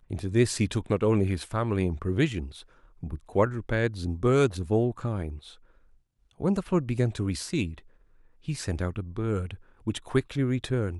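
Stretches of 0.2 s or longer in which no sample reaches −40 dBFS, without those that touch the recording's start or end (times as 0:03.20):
0:02.61–0:03.03
0:05.51–0:06.40
0:07.79–0:08.48
0:09.55–0:09.87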